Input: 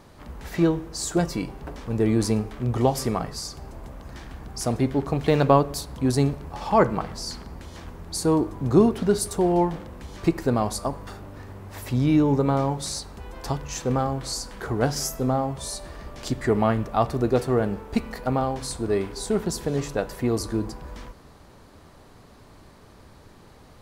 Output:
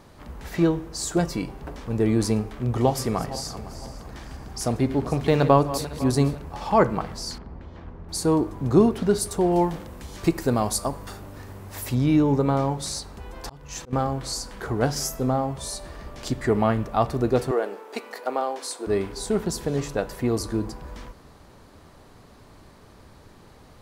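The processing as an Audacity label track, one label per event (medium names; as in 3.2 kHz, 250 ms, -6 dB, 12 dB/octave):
2.600000	6.420000	backward echo that repeats 253 ms, feedback 57%, level -13 dB
7.380000	8.090000	tape spacing loss at 10 kHz 33 dB
9.520000	11.950000	treble shelf 5.4 kHz +9 dB
13.360000	13.930000	slow attack 352 ms
17.510000	18.870000	high-pass 350 Hz 24 dB/octave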